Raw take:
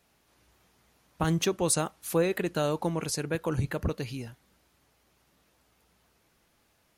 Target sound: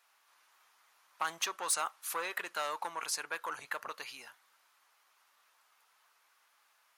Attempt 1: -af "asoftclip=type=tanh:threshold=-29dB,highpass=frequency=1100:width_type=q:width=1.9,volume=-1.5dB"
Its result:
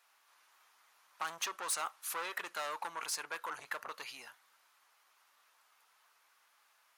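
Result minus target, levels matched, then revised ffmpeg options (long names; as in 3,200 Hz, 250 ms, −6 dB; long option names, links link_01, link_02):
soft clipping: distortion +7 dB
-af "asoftclip=type=tanh:threshold=-22dB,highpass=frequency=1100:width_type=q:width=1.9,volume=-1.5dB"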